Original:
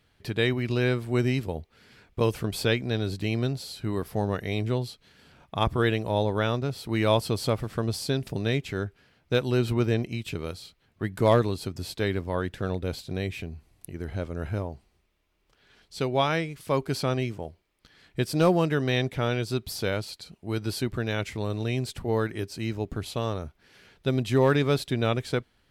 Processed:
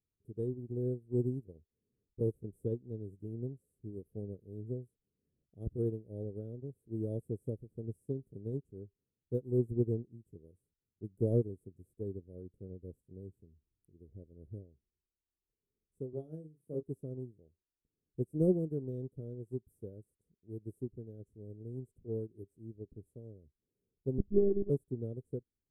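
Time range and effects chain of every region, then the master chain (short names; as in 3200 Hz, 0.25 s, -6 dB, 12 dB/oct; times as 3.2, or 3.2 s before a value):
16.13–16.83 HPF 110 Hz 24 dB/oct + doubler 32 ms -5.5 dB
24.18–24.7 companded quantiser 8-bit + bell 1400 Hz -5.5 dB 2.8 oct + monotone LPC vocoder at 8 kHz 200 Hz
whole clip: elliptic band-stop 440–9000 Hz, stop band 40 dB; high shelf 4800 Hz -11 dB; upward expander 2.5:1, over -35 dBFS; gain -1.5 dB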